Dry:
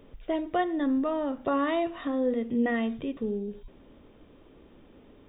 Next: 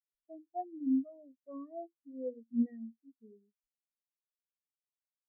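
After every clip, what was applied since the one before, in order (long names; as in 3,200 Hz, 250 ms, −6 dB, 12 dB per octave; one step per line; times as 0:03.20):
every bin expanded away from the loudest bin 4 to 1
level −7.5 dB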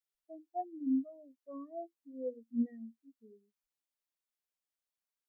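parametric band 120 Hz −12.5 dB 1.1 octaves
level +1 dB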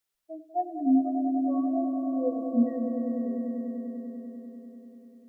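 echo that builds up and dies away 98 ms, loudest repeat 5, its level −9 dB
level +9 dB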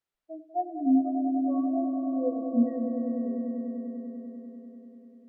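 low-pass filter 1,700 Hz 6 dB per octave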